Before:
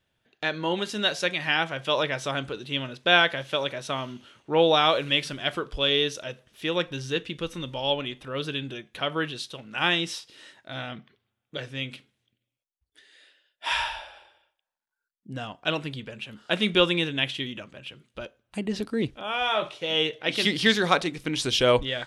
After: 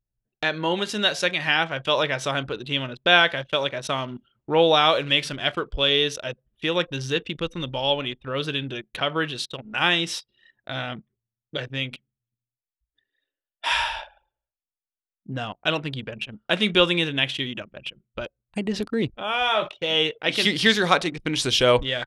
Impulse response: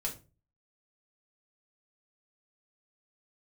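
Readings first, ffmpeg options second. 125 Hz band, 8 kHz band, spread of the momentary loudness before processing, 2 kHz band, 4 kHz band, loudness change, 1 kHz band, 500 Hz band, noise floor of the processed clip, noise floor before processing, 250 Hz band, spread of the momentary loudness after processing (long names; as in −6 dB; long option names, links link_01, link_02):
+3.0 dB, +3.5 dB, 17 LU, +3.0 dB, +3.5 dB, +3.0 dB, +3.0 dB, +2.5 dB, below −85 dBFS, −84 dBFS, +2.0 dB, 15 LU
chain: -filter_complex "[0:a]anlmdn=0.398,equalizer=frequency=270:width_type=o:width=1.5:gain=-2,asplit=2[link_01][link_02];[link_02]acompressor=threshold=-39dB:ratio=6,volume=0.5dB[link_03];[link_01][link_03]amix=inputs=2:normalize=0,volume=2dB"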